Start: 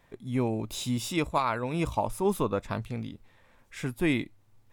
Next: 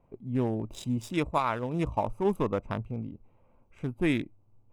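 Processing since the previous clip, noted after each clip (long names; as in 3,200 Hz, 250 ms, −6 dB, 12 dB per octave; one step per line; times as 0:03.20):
adaptive Wiener filter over 25 samples
notch filter 4,300 Hz, Q 5.2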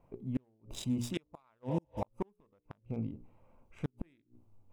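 healed spectral selection 0:01.72–0:01.99, 420–4,700 Hz before
mains-hum notches 60/120/180/240/300/360/420/480/540 Hz
gate with flip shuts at −22 dBFS, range −40 dB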